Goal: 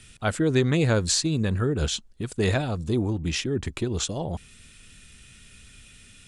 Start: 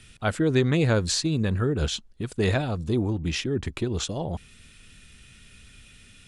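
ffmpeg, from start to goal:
ffmpeg -i in.wav -af "equalizer=frequency=7900:width_type=o:width=0.92:gain=5" out.wav

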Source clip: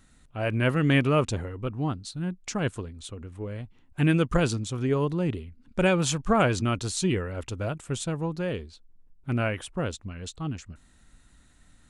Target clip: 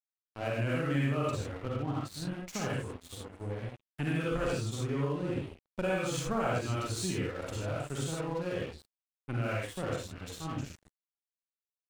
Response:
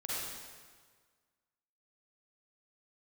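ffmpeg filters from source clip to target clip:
-filter_complex "[0:a]acrossover=split=300|1000|1800[link_01][link_02][link_03][link_04];[link_04]asoftclip=type=tanh:threshold=-26dB[link_05];[link_01][link_02][link_03][link_05]amix=inputs=4:normalize=0[link_06];[1:a]atrim=start_sample=2205,afade=type=out:start_time=0.21:duration=0.01,atrim=end_sample=9702[link_07];[link_06][link_07]afir=irnorm=-1:irlink=0,aeval=exprs='sgn(val(0))*max(abs(val(0))-0.00891,0)':channel_layout=same,acompressor=threshold=-32dB:ratio=2.5"

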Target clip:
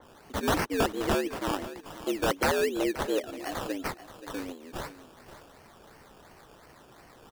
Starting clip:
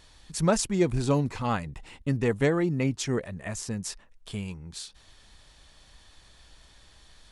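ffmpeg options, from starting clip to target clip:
ffmpeg -i in.wav -filter_complex "[0:a]highpass=frequency=230:width=0.5412,highpass=frequency=230:width=1.3066,equalizer=frequency=1400:width_type=o:width=1.1:gain=-10.5,asplit=2[link_01][link_02];[link_02]acompressor=threshold=-41dB:ratio=12,volume=1dB[link_03];[link_01][link_03]amix=inputs=2:normalize=0,afreqshift=80,acrusher=samples=17:mix=1:aa=0.000001:lfo=1:lforange=10.2:lforate=2.8,aeval=exprs='(mod(8.41*val(0)+1,2)-1)/8.41':channel_layout=same,asplit=2[link_04][link_05];[link_05]aecho=0:1:528|1056|1584:0.2|0.0459|0.0106[link_06];[link_04][link_06]amix=inputs=2:normalize=0,adynamicequalizer=threshold=0.00631:dfrequency=3100:dqfactor=0.7:tfrequency=3100:tqfactor=0.7:attack=5:release=100:ratio=0.375:range=1.5:mode=cutabove:tftype=highshelf" out.wav

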